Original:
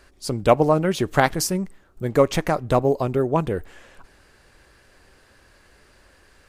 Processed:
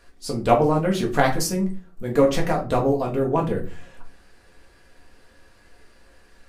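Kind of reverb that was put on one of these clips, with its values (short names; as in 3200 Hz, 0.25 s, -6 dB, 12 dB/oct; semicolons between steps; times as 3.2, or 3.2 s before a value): shoebox room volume 180 m³, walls furnished, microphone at 1.8 m; gain -4.5 dB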